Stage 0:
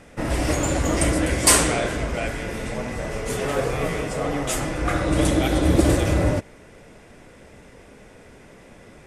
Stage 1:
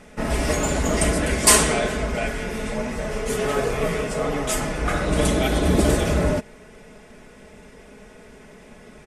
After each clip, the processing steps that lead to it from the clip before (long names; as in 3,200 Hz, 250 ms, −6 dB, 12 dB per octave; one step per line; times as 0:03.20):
comb filter 4.7 ms, depth 57%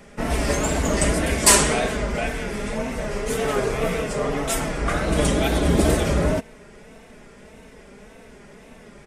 tape wow and flutter 90 cents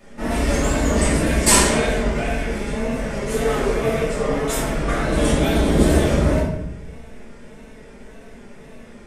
rectangular room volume 220 cubic metres, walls mixed, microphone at 2.6 metres
level −7 dB